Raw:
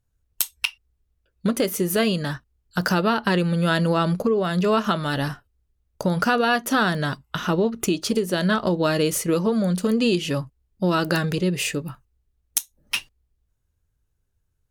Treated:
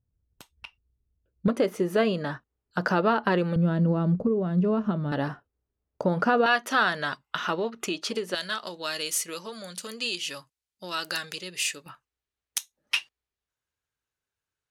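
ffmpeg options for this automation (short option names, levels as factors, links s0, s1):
-af "asetnsamples=n=441:p=0,asendcmd='1.48 bandpass f 670;3.56 bandpass f 130;5.12 bandpass f 530;6.46 bandpass f 1800;8.35 bandpass f 5700;11.86 bandpass f 2300',bandpass=f=150:t=q:w=0.51:csg=0"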